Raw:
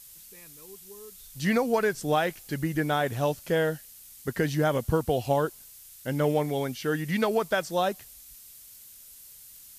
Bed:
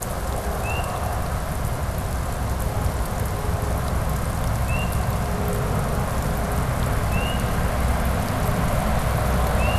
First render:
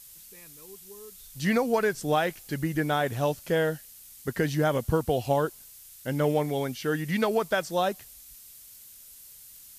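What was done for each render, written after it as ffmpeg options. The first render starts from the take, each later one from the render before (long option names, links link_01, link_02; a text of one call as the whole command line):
ffmpeg -i in.wav -af anull out.wav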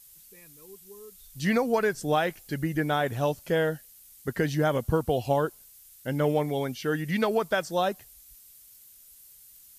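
ffmpeg -i in.wav -af "afftdn=noise_reduction=6:noise_floor=-50" out.wav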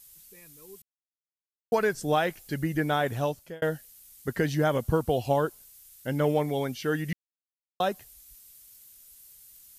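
ffmpeg -i in.wav -filter_complex "[0:a]asplit=6[link_01][link_02][link_03][link_04][link_05][link_06];[link_01]atrim=end=0.82,asetpts=PTS-STARTPTS,afade=type=out:start_time=0.816:duration=0.004:curve=hsin[link_07];[link_02]atrim=start=0.82:end=1.72,asetpts=PTS-STARTPTS,volume=0[link_08];[link_03]atrim=start=1.72:end=3.62,asetpts=PTS-STARTPTS,afade=type=in:duration=0.004:curve=hsin,afade=type=out:start_time=1.45:duration=0.45[link_09];[link_04]atrim=start=3.62:end=7.13,asetpts=PTS-STARTPTS,afade=type=in:duration=0.004:curve=hsin,afade=type=out:start_time=3.506:duration=0.004:curve=hsin[link_10];[link_05]atrim=start=7.13:end=7.8,asetpts=PTS-STARTPTS,volume=0[link_11];[link_06]atrim=start=7.8,asetpts=PTS-STARTPTS,afade=type=in:duration=0.004:curve=hsin[link_12];[link_07][link_08][link_09][link_10][link_11][link_12]concat=n=6:v=0:a=1" out.wav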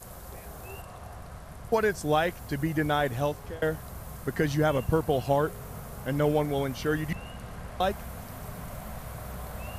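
ffmpeg -i in.wav -i bed.wav -filter_complex "[1:a]volume=-18dB[link_01];[0:a][link_01]amix=inputs=2:normalize=0" out.wav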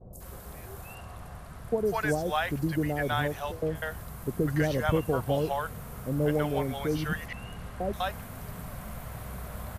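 ffmpeg -i in.wav -filter_complex "[0:a]acrossover=split=650|5800[link_01][link_02][link_03];[link_03]adelay=130[link_04];[link_02]adelay=200[link_05];[link_01][link_05][link_04]amix=inputs=3:normalize=0" out.wav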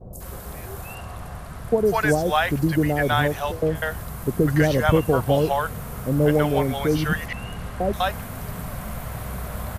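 ffmpeg -i in.wav -af "volume=8dB" out.wav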